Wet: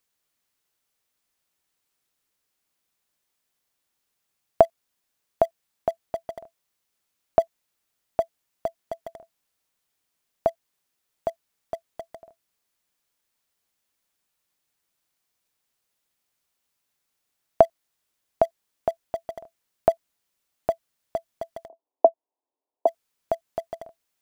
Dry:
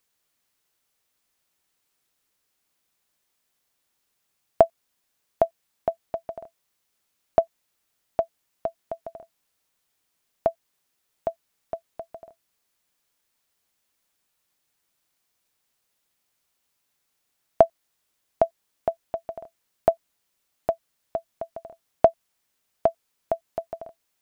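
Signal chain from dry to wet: in parallel at -6.5 dB: sample gate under -31 dBFS; 21.68–22.87 on the sum: Chebyshev band-pass 270–1000 Hz, order 4; gain -3 dB

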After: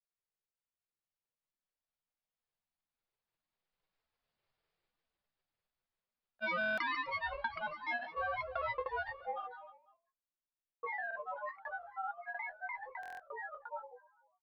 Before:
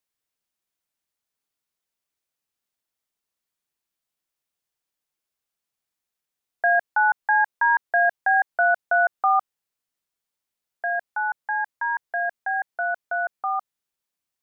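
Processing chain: Doppler pass-by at 4.47, 20 m/s, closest 12 m; soft clip -31 dBFS, distortion -12 dB; bell 340 Hz -11 dB 0.64 oct; on a send: feedback echo 0.133 s, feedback 44%, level -17 dB; on the sum: shoebox room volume 150 m³, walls furnished, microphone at 1.6 m; compressor, threshold -38 dBFS, peak gain reduction 8.5 dB; grains 0.1 s, grains 20/s, pitch spread up and down by 7 st; downsampling 11025 Hz; stuck buffer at 6.59/13.01, samples 1024, times 7; mismatched tape noise reduction decoder only; gain +5.5 dB

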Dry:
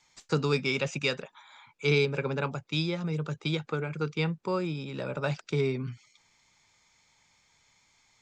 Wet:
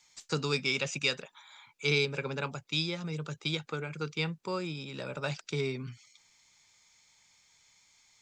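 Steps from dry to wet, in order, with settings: high shelf 2400 Hz +10.5 dB; gain -5.5 dB

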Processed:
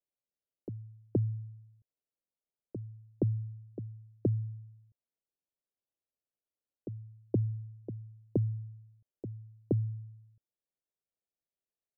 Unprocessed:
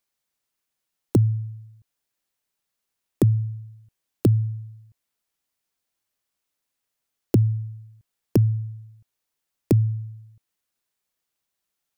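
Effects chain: ladder low-pass 720 Hz, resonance 35%; on a send: reverse echo 0.471 s -12 dB; on the sum: gain -4.5 dB

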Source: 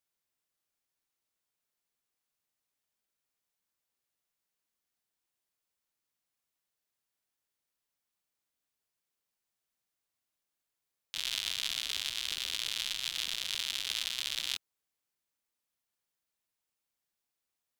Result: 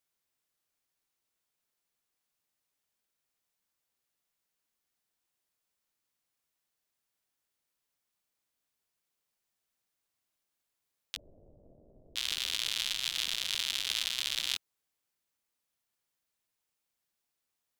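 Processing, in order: 11.16–12.16 Chebyshev low-pass 620 Hz, order 5; gain +2 dB

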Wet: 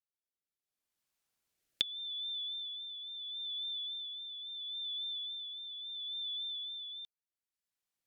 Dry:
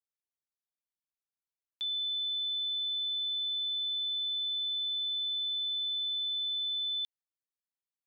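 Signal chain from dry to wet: recorder AGC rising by 15 dB/s; rotary speaker horn 0.75 Hz; vibrato 3.6 Hz 37 cents; gain -5.5 dB

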